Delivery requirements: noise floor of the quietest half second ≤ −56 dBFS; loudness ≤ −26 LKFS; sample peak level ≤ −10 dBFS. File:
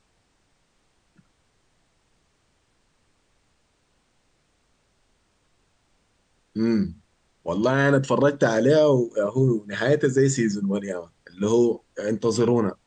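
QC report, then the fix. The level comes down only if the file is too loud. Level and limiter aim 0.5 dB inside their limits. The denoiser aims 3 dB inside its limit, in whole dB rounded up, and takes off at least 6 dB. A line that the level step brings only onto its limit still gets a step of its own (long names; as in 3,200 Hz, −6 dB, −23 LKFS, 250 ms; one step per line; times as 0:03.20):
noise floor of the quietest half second −67 dBFS: in spec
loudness −22.0 LKFS: out of spec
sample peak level −7.5 dBFS: out of spec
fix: level −4.5 dB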